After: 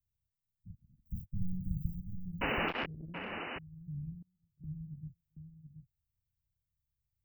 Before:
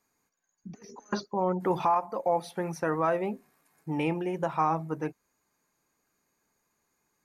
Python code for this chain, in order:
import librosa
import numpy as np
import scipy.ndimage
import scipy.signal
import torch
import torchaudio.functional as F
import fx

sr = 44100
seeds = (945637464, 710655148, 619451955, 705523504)

y = fx.spec_clip(x, sr, under_db=15)
y = fx.leveller(y, sr, passes=3, at=(1.05, 2.14))
y = scipy.signal.sosfilt(scipy.signal.cheby2(4, 70, [430.0, 8300.0], 'bandstop', fs=sr, output='sos'), y)
y = fx.spec_paint(y, sr, seeds[0], shape='noise', start_s=2.41, length_s=0.45, low_hz=210.0, high_hz=3000.0, level_db=-39.0)
y = fx.peak_eq(y, sr, hz=170.0, db=7.0, octaves=3.0)
y = fx.gate_flip(y, sr, shuts_db=-52.0, range_db=-30, at=(4.22, 4.64))
y = y + 10.0 ** (-8.0 / 20.0) * np.pad(y, (int(728 * sr / 1000.0), 0))[:len(y)]
y = fx.transformer_sat(y, sr, knee_hz=780.0, at=(2.68, 3.32))
y = y * 10.0 ** (4.5 / 20.0)